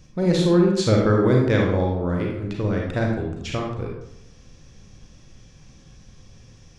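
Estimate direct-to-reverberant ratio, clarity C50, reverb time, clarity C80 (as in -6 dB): -0.5 dB, 2.0 dB, 0.80 s, 5.5 dB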